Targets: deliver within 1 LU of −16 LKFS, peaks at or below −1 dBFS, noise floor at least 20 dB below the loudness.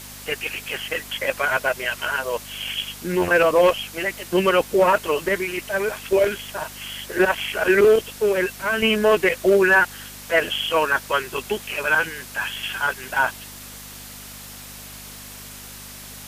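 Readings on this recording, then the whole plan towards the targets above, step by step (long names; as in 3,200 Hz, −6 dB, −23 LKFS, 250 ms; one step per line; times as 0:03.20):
mains hum 50 Hz; hum harmonics up to 250 Hz; level of the hum −44 dBFS; background noise floor −39 dBFS; target noise floor −41 dBFS; integrated loudness −21.0 LKFS; sample peak −7.5 dBFS; target loudness −16.0 LKFS
→ hum removal 50 Hz, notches 5
broadband denoise 6 dB, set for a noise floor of −39 dBFS
level +5 dB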